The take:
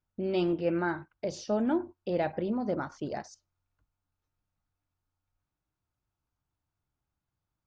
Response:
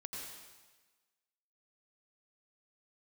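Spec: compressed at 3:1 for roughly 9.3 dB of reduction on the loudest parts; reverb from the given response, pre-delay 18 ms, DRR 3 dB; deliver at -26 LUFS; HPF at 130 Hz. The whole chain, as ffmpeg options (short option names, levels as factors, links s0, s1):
-filter_complex "[0:a]highpass=130,acompressor=threshold=0.0141:ratio=3,asplit=2[s0][s1];[1:a]atrim=start_sample=2205,adelay=18[s2];[s1][s2]afir=irnorm=-1:irlink=0,volume=0.841[s3];[s0][s3]amix=inputs=2:normalize=0,volume=3.98"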